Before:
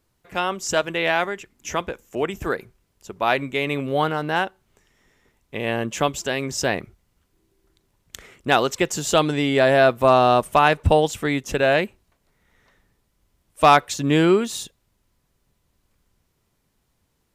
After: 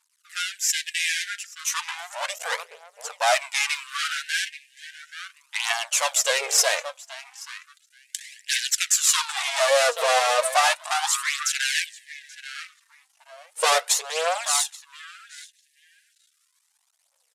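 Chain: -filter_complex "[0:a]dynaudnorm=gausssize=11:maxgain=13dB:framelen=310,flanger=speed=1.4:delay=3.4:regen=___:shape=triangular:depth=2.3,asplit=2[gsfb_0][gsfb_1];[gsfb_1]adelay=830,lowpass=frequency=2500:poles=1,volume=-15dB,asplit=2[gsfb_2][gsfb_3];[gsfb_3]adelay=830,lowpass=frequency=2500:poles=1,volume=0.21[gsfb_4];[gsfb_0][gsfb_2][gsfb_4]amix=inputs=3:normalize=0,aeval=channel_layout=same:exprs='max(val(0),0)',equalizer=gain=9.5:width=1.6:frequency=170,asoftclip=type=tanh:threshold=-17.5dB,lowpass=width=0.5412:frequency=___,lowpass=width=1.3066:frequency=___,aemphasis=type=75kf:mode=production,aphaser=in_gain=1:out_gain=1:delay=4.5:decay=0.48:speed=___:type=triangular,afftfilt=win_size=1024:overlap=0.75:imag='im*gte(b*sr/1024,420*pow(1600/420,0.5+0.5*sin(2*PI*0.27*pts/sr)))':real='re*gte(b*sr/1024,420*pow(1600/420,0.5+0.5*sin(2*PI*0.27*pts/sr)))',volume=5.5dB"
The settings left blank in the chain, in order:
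-64, 10000, 10000, 0.35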